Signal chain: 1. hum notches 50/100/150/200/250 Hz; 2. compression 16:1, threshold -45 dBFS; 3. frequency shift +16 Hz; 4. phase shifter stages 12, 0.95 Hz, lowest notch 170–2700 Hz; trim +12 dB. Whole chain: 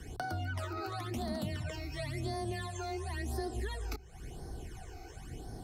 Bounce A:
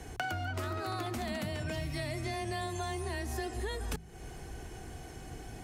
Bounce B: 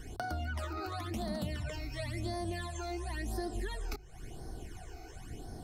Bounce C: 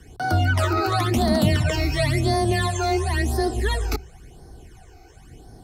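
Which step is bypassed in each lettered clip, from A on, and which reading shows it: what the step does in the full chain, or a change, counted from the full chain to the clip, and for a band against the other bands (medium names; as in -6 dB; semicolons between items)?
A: 4, 125 Hz band -2.5 dB; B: 3, crest factor change +2.0 dB; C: 2, mean gain reduction 11.5 dB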